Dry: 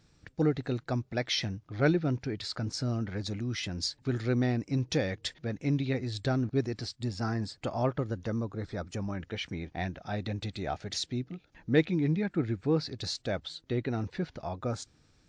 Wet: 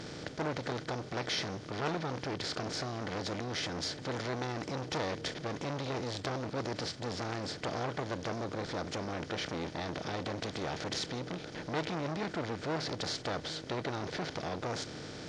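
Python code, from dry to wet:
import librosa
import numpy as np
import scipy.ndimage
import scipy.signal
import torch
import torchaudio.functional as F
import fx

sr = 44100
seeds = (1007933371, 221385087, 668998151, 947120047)

y = fx.bin_compress(x, sr, power=0.4)
y = fx.transformer_sat(y, sr, knee_hz=2000.0)
y = F.gain(torch.from_numpy(y), -6.5).numpy()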